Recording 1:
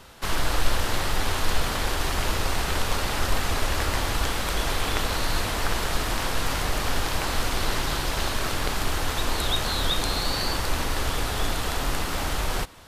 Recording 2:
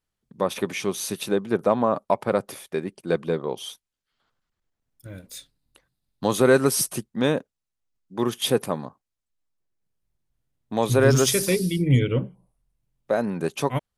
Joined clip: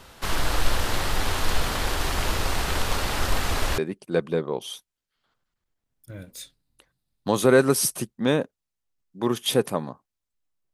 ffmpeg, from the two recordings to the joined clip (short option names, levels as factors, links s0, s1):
-filter_complex "[0:a]apad=whole_dur=10.73,atrim=end=10.73,atrim=end=3.782[s0];[1:a]atrim=start=2.738:end=9.69[s1];[s0][s1]acrossfade=d=0.004:c1=hsin:c2=hsin"